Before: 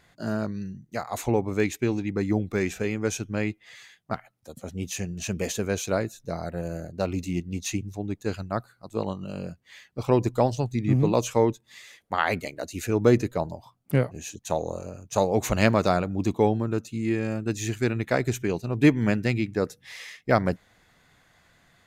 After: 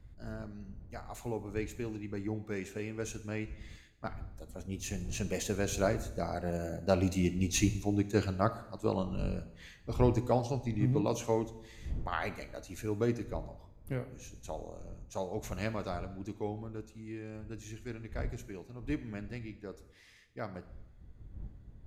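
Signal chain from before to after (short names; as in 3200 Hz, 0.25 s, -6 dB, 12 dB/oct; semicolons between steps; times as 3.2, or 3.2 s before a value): Doppler pass-by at 7.66, 6 m/s, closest 7.7 m; wind noise 84 Hz -46 dBFS; two-slope reverb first 0.83 s, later 3.1 s, from -24 dB, DRR 10 dB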